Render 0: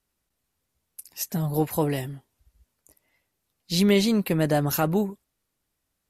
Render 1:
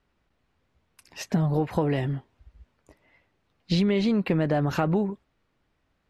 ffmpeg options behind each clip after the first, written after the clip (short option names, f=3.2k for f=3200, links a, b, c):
-filter_complex "[0:a]lowpass=2.7k,asplit=2[a][b];[b]alimiter=limit=-18.5dB:level=0:latency=1:release=23,volume=-1.5dB[c];[a][c]amix=inputs=2:normalize=0,acompressor=threshold=-24dB:ratio=10,volume=4dB"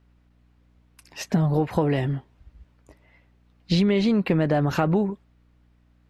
-af "aeval=exprs='val(0)+0.000891*(sin(2*PI*60*n/s)+sin(2*PI*2*60*n/s)/2+sin(2*PI*3*60*n/s)/3+sin(2*PI*4*60*n/s)/4+sin(2*PI*5*60*n/s)/5)':c=same,volume=2.5dB"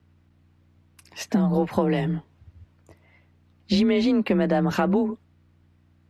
-af "afreqshift=28"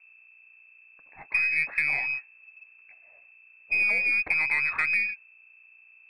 -af "aeval=exprs='val(0)+0.00316*(sin(2*PI*60*n/s)+sin(2*PI*2*60*n/s)/2+sin(2*PI*3*60*n/s)/3+sin(2*PI*4*60*n/s)/4+sin(2*PI*5*60*n/s)/5)':c=same,lowpass=f=2.3k:t=q:w=0.5098,lowpass=f=2.3k:t=q:w=0.6013,lowpass=f=2.3k:t=q:w=0.9,lowpass=f=2.3k:t=q:w=2.563,afreqshift=-2700,aeval=exprs='0.376*(cos(1*acos(clip(val(0)/0.376,-1,1)))-cos(1*PI/2))+0.00944*(cos(6*acos(clip(val(0)/0.376,-1,1)))-cos(6*PI/2))':c=same,volume=-4.5dB"